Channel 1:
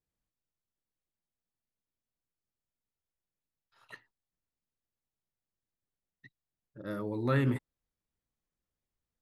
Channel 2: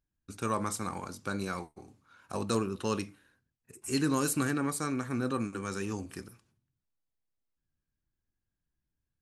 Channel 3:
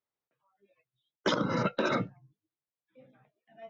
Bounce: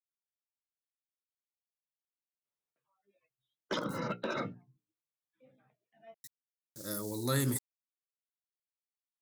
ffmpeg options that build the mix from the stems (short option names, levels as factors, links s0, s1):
-filter_complex "[0:a]aeval=exprs='val(0)*gte(abs(val(0)),0.00158)':c=same,aexciter=amount=15.8:drive=6.9:freq=4300,volume=0.668,afade=t=in:st=6.02:d=0.6:silence=0.237137[s0];[2:a]bandreject=f=60:t=h:w=6,bandreject=f=120:t=h:w=6,bandreject=f=180:t=h:w=6,bandreject=f=240:t=h:w=6,bandreject=f=300:t=h:w=6,bandreject=f=360:t=h:w=6,bandreject=f=420:t=h:w=6,asoftclip=type=hard:threshold=0.1,adelay=2450,volume=0.473[s1];[s0][s1]amix=inputs=2:normalize=0"